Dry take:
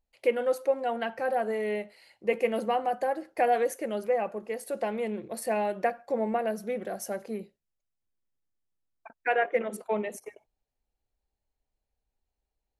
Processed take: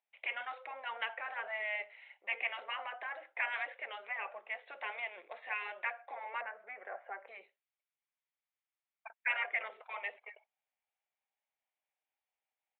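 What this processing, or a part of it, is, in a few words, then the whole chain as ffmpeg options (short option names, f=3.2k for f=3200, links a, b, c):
musical greeting card: -filter_complex "[0:a]asettb=1/sr,asplit=3[a][b][c];[a]atrim=end=6.414[d];[b]atrim=start=6.41:end=7.28,asetpts=PTS-STARTPTS,afade=t=in:d=0.004:c=qsin,afade=t=out:st=0.866:d=0.004:c=qsin,lowpass=f=1.9k:w=0.5412,lowpass=f=1.9k:w=1.3066[e];[c]atrim=start=7.276[f];[d][e]acrossfade=d=0.004:c1=hsin:c2=qsin[g];[g][f]acrossfade=d=0.004:c1=qsin:c2=hsin,afftfilt=real='re*lt(hypot(re,im),0.158)':imag='im*lt(hypot(re,im),0.158)':win_size=1024:overlap=0.75,aresample=8000,aresample=44100,highpass=f=660:w=0.5412,highpass=f=660:w=1.3066,equalizer=f=2.2k:t=o:w=0.45:g=7.5,volume=-1.5dB"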